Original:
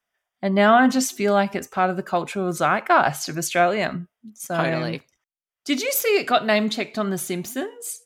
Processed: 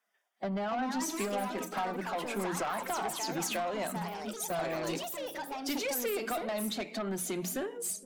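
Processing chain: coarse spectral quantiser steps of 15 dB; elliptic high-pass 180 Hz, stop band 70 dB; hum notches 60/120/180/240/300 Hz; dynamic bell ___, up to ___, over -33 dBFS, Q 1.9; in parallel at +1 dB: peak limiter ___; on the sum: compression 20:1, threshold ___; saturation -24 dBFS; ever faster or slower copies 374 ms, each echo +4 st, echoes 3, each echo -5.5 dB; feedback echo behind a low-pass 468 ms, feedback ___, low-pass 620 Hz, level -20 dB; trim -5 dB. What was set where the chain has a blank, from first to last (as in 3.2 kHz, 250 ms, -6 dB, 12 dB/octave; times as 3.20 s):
830 Hz, +6 dB, -10 dBFS, -22 dBFS, 50%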